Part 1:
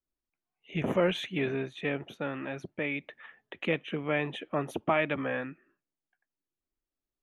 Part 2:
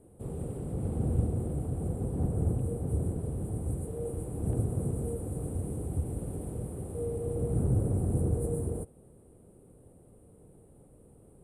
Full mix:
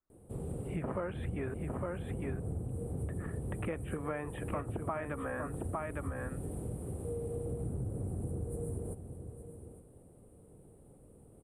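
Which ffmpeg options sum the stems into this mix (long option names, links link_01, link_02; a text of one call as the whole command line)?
ffmpeg -i stem1.wav -i stem2.wav -filter_complex "[0:a]lowpass=frequency=1300:width_type=q:width=1.9,volume=1dB,asplit=3[link_01][link_02][link_03];[link_01]atrim=end=1.54,asetpts=PTS-STARTPTS,afade=type=out:start_time=1.536:duration=0.004:curve=hsin[link_04];[link_02]atrim=start=1.54:end=3.03,asetpts=PTS-STARTPTS,volume=0[link_05];[link_03]atrim=start=3.03,asetpts=PTS-STARTPTS,afade=type=in:duration=0.004:curve=hsin[link_06];[link_04][link_05][link_06]concat=n=3:v=0:a=1,asplit=2[link_07][link_08];[link_08]volume=-6.5dB[link_09];[1:a]adelay=100,volume=-1.5dB,asplit=2[link_10][link_11];[link_11]volume=-16.5dB[link_12];[link_09][link_12]amix=inputs=2:normalize=0,aecho=0:1:857:1[link_13];[link_07][link_10][link_13]amix=inputs=3:normalize=0,acompressor=threshold=-34dB:ratio=6" out.wav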